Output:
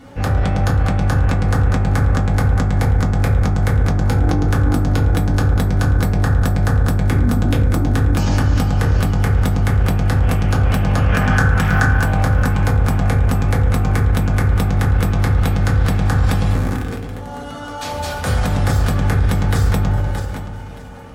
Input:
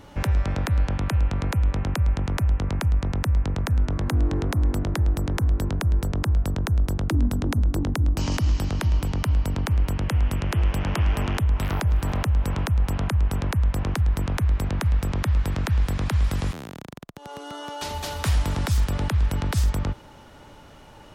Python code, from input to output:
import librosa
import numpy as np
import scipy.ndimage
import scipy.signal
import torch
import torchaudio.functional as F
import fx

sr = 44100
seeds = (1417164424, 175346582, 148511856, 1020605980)

p1 = fx.spec_quant(x, sr, step_db=15)
p2 = fx.graphic_eq_15(p1, sr, hz=(160, 1600, 6300), db=(5, 11, 6), at=(11.12, 11.83))
p3 = fx.over_compress(p2, sr, threshold_db=-22.0, ratio=-1.0)
p4 = p2 + F.gain(torch.from_numpy(p3), -1.0).numpy()
p5 = fx.echo_feedback(p4, sr, ms=623, feedback_pct=35, wet_db=-14.5)
p6 = fx.rev_fdn(p5, sr, rt60_s=0.84, lf_ratio=1.0, hf_ratio=0.3, size_ms=12.0, drr_db=-5.5)
p7 = fx.sustainer(p6, sr, db_per_s=24.0)
y = F.gain(torch.from_numpy(p7), -5.0).numpy()